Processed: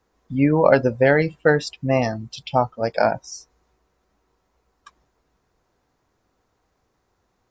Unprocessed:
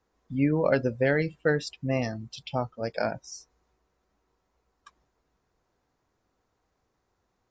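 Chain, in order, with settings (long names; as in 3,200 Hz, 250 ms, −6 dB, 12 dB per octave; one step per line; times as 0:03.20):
dynamic equaliser 870 Hz, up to +8 dB, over −42 dBFS, Q 1.4
level +6 dB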